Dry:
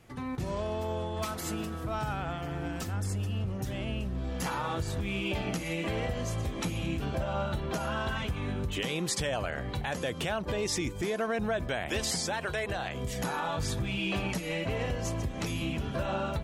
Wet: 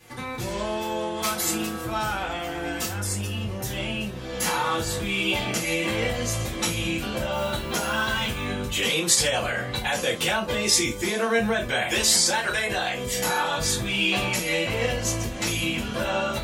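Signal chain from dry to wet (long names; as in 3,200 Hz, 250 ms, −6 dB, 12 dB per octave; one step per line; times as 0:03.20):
spectral tilt +2 dB per octave
0:07.31–0:08.44: noise that follows the level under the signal 22 dB
convolution reverb, pre-delay 3 ms, DRR −7.5 dB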